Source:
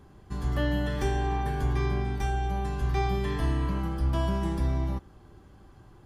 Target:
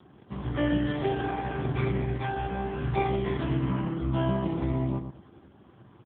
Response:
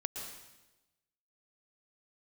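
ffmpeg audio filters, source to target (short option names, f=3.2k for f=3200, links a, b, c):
-filter_complex "[0:a]highshelf=f=3.1k:g=4.5,asplit=2[a][b];[b]adelay=115,lowpass=f=1.2k:p=1,volume=-8dB,asplit=2[c][d];[d]adelay=115,lowpass=f=1.2k:p=1,volume=0.27,asplit=2[e][f];[f]adelay=115,lowpass=f=1.2k:p=1,volume=0.27[g];[c][e][g]amix=inputs=3:normalize=0[h];[a][h]amix=inputs=2:normalize=0,volume=3.5dB" -ar 8000 -c:a libopencore_amrnb -b:a 4750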